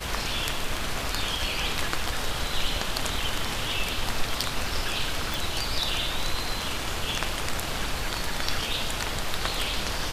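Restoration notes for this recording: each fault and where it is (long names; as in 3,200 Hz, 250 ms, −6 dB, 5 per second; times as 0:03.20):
0:05.34: click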